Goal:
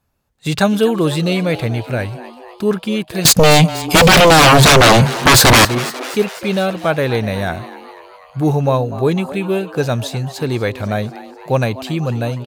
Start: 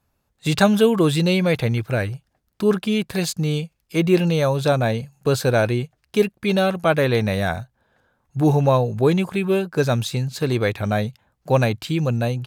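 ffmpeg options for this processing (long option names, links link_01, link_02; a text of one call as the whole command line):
ffmpeg -i in.wav -filter_complex "[0:a]asettb=1/sr,asplit=3[link_01][link_02][link_03];[link_01]atrim=end=3.254[link_04];[link_02]atrim=start=3.25:end=5.65,asetpts=PTS-STARTPTS,afade=type=in:duration=0.004:curve=qsin,afade=type=out:start_time=2.396:duration=0.004:curve=qsin,aeval=exprs='0.501*sin(PI/2*7.94*val(0)/0.501)':channel_layout=same[link_05];[link_03]atrim=start=5.646[link_06];[link_04][link_05]acrossfade=duration=0.004:curve1=hsin:curve2=qsin[link_07];[link_07][link_06]acrossfade=duration=0.004:curve1=qsin:curve2=hsin,asplit=7[link_08][link_09][link_10][link_11][link_12][link_13][link_14];[link_09]adelay=247,afreqshift=130,volume=-16dB[link_15];[link_10]adelay=494,afreqshift=260,volume=-20.4dB[link_16];[link_11]adelay=741,afreqshift=390,volume=-24.9dB[link_17];[link_12]adelay=988,afreqshift=520,volume=-29.3dB[link_18];[link_13]adelay=1235,afreqshift=650,volume=-33.7dB[link_19];[link_14]adelay=1482,afreqshift=780,volume=-38.2dB[link_20];[link_08][link_15][link_16][link_17][link_18][link_19][link_20]amix=inputs=7:normalize=0,volume=1.5dB" out.wav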